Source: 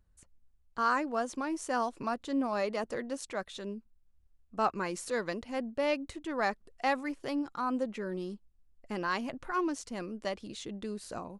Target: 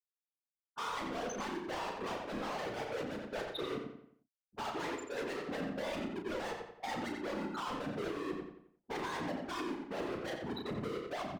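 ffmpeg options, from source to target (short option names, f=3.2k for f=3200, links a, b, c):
-filter_complex "[0:a]afftfilt=real='re*gte(hypot(re,im),0.0398)':imag='im*gte(hypot(re,im),0.0398)':win_size=1024:overlap=0.75,agate=range=-9dB:threshold=-50dB:ratio=16:detection=peak,highpass=210,equalizer=f=220:t=q:w=4:g=-9,equalizer=f=330:t=q:w=4:g=8,equalizer=f=480:t=q:w=4:g=5,equalizer=f=890:t=q:w=4:g=6,equalizer=f=1.9k:t=q:w=4:g=5,lowpass=f=7.6k:w=0.5412,lowpass=f=7.6k:w=1.3066,areverse,acompressor=threshold=-35dB:ratio=12,areverse,asplit=2[a][b];[b]highpass=f=720:p=1,volume=33dB,asoftclip=type=tanh:threshold=-28dB[c];[a][c]amix=inputs=2:normalize=0,lowpass=f=2.8k:p=1,volume=-6dB,asoftclip=type=hard:threshold=-38.5dB,afftfilt=real='hypot(re,im)*cos(2*PI*random(0))':imag='hypot(re,im)*sin(2*PI*random(1))':win_size=512:overlap=0.75,asplit=2[d][e];[e]adelay=34,volume=-7dB[f];[d][f]amix=inputs=2:normalize=0,asplit=2[g][h];[h]adelay=88,lowpass=f=4.3k:p=1,volume=-4dB,asplit=2[i][j];[j]adelay=88,lowpass=f=4.3k:p=1,volume=0.39,asplit=2[k][l];[l]adelay=88,lowpass=f=4.3k:p=1,volume=0.39,asplit=2[m][n];[n]adelay=88,lowpass=f=4.3k:p=1,volume=0.39,asplit=2[o][p];[p]adelay=88,lowpass=f=4.3k:p=1,volume=0.39[q];[i][k][m][o][q]amix=inputs=5:normalize=0[r];[g][r]amix=inputs=2:normalize=0,alimiter=level_in=11.5dB:limit=-24dB:level=0:latency=1:release=344,volume=-11.5dB,volume=7dB"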